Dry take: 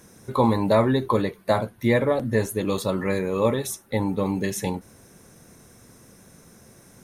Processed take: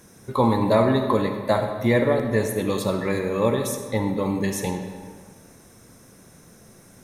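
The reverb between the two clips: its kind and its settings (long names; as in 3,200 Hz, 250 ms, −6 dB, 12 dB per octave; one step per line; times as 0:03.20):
comb and all-pass reverb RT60 1.7 s, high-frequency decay 0.7×, pre-delay 15 ms, DRR 5.5 dB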